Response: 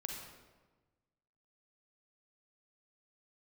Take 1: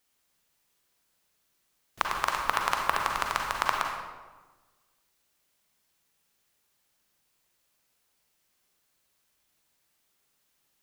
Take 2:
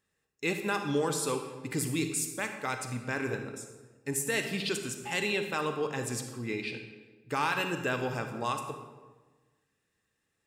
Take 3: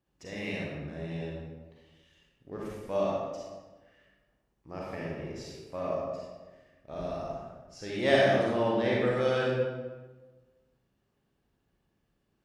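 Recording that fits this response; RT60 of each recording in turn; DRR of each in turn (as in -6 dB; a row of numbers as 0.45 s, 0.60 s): 1; 1.3 s, 1.3 s, 1.3 s; 1.0 dB, 6.0 dB, -5.5 dB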